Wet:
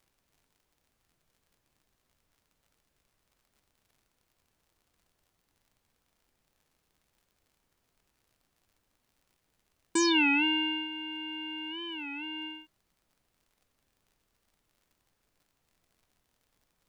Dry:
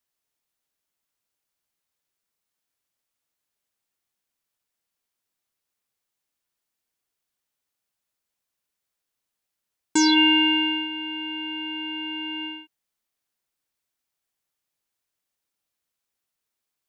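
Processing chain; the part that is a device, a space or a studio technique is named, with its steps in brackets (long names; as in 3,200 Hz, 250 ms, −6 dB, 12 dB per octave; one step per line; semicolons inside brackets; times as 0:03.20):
warped LP (wow of a warped record 33 1/3 rpm, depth 160 cents; surface crackle; pink noise bed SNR 39 dB)
level −7 dB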